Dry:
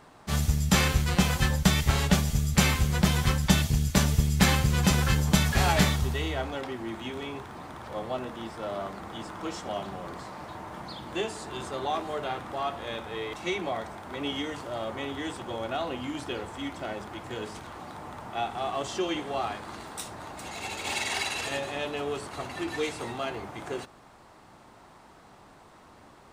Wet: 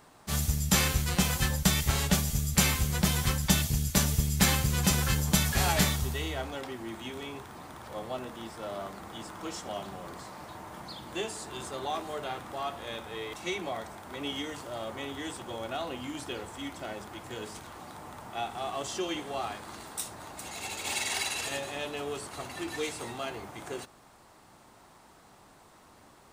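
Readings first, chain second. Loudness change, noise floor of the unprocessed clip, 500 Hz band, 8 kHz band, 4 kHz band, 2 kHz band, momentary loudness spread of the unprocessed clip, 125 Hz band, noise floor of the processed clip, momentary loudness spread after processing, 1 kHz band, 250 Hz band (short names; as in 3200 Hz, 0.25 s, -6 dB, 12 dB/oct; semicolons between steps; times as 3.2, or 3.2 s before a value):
-2.0 dB, -54 dBFS, -4.0 dB, +2.5 dB, -1.0 dB, -3.0 dB, 15 LU, -4.0 dB, -57 dBFS, 17 LU, -4.0 dB, -4.0 dB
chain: high shelf 6300 Hz +11.5 dB; gain -4 dB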